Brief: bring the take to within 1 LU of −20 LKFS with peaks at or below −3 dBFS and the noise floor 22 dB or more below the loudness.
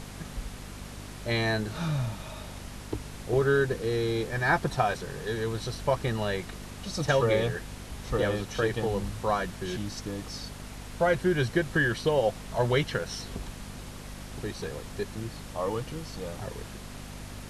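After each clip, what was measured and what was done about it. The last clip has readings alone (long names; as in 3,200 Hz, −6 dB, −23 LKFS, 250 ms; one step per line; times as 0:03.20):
mains hum 50 Hz; hum harmonics up to 250 Hz; level of the hum −41 dBFS; background noise floor −43 dBFS; target noise floor −52 dBFS; integrated loudness −29.5 LKFS; sample peak −10.5 dBFS; target loudness −20.0 LKFS
→ hum removal 50 Hz, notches 5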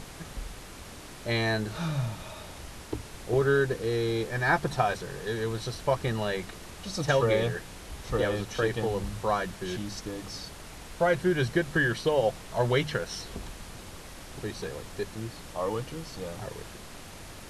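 mains hum none found; background noise floor −45 dBFS; target noise floor −52 dBFS
→ noise reduction from a noise print 7 dB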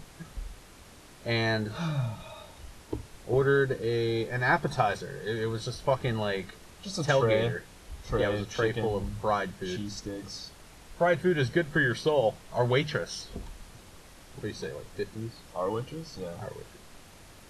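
background noise floor −52 dBFS; integrated loudness −29.5 LKFS; sample peak −10.5 dBFS; target loudness −20.0 LKFS
→ level +9.5 dB
brickwall limiter −3 dBFS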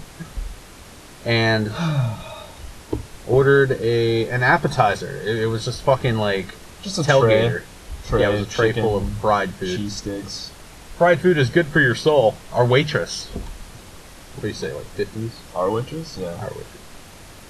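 integrated loudness −20.0 LKFS; sample peak −3.0 dBFS; background noise floor −42 dBFS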